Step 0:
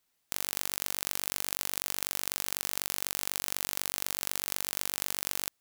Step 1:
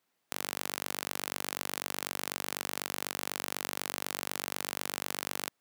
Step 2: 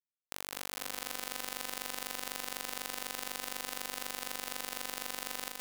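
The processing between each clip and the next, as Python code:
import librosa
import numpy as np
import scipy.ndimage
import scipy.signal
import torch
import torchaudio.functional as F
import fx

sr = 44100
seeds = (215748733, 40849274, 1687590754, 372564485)

y1 = scipy.signal.sosfilt(scipy.signal.butter(2, 150.0, 'highpass', fs=sr, output='sos'), x)
y1 = fx.high_shelf(y1, sr, hz=2900.0, db=-11.0)
y1 = y1 * 10.0 ** (5.0 / 20.0)
y2 = np.sign(y1) * np.maximum(np.abs(y1) - 10.0 ** (-41.0 / 20.0), 0.0)
y2 = fx.echo_heads(y2, sr, ms=204, heads='first and second', feedback_pct=46, wet_db=-6.5)
y2 = y2 * 10.0 ** (-4.5 / 20.0)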